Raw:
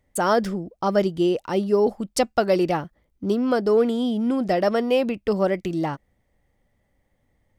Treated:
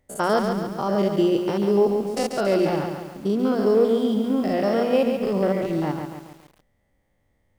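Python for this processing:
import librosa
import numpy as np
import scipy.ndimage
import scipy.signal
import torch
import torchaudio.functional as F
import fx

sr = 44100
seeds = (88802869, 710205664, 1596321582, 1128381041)

y = fx.spec_steps(x, sr, hold_ms=100)
y = fx.hum_notches(y, sr, base_hz=60, count=4)
y = fx.echo_crushed(y, sr, ms=139, feedback_pct=55, bits=8, wet_db=-6)
y = F.gain(torch.from_numpy(y), 1.5).numpy()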